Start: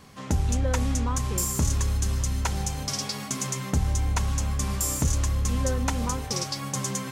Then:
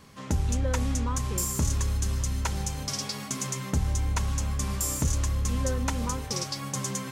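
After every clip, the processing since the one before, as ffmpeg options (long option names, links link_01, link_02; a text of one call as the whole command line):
ffmpeg -i in.wav -af "bandreject=frequency=740:width=12,volume=-2dB" out.wav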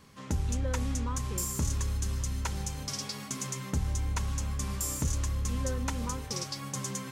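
ffmpeg -i in.wav -af "equalizer=frequency=680:width_type=o:width=0.41:gain=-3,volume=-4dB" out.wav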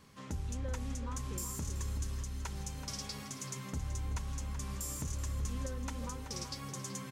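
ffmpeg -i in.wav -filter_complex "[0:a]alimiter=level_in=1.5dB:limit=-24dB:level=0:latency=1:release=465,volume=-1.5dB,asplit=2[link_01][link_02];[link_02]adelay=379,volume=-8dB,highshelf=frequency=4000:gain=-8.53[link_03];[link_01][link_03]amix=inputs=2:normalize=0,volume=-3.5dB" out.wav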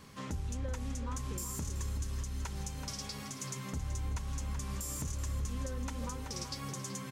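ffmpeg -i in.wav -af "alimiter=level_in=10.5dB:limit=-24dB:level=0:latency=1:release=488,volume=-10.5dB,volume=6dB" out.wav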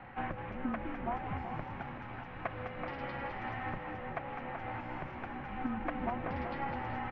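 ffmpeg -i in.wav -filter_complex "[0:a]highpass=frequency=330:width_type=q:width=0.5412,highpass=frequency=330:width_type=q:width=1.307,lowpass=frequency=2600:width_type=q:width=0.5176,lowpass=frequency=2600:width_type=q:width=0.7071,lowpass=frequency=2600:width_type=q:width=1.932,afreqshift=-280,asplit=7[link_01][link_02][link_03][link_04][link_05][link_06][link_07];[link_02]adelay=203,afreqshift=62,volume=-8dB[link_08];[link_03]adelay=406,afreqshift=124,volume=-14.2dB[link_09];[link_04]adelay=609,afreqshift=186,volume=-20.4dB[link_10];[link_05]adelay=812,afreqshift=248,volume=-26.6dB[link_11];[link_06]adelay=1015,afreqshift=310,volume=-32.8dB[link_12];[link_07]adelay=1218,afreqshift=372,volume=-39dB[link_13];[link_01][link_08][link_09][link_10][link_11][link_12][link_13]amix=inputs=7:normalize=0,volume=9.5dB" out.wav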